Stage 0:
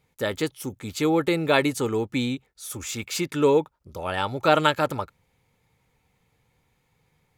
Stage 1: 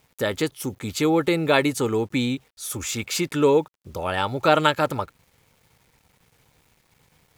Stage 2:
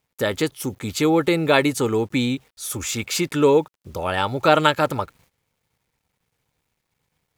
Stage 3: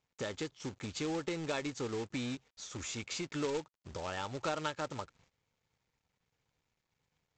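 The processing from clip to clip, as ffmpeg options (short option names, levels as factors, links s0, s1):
-filter_complex "[0:a]asplit=2[s0][s1];[s1]acompressor=threshold=0.0224:ratio=4,volume=0.794[s2];[s0][s2]amix=inputs=2:normalize=0,acrusher=bits=9:mix=0:aa=0.000001"
-af "agate=range=0.178:threshold=0.00158:ratio=16:detection=peak,volume=1.26"
-af "acompressor=threshold=0.0158:ratio=2,aresample=16000,acrusher=bits=2:mode=log:mix=0:aa=0.000001,aresample=44100,volume=0.422"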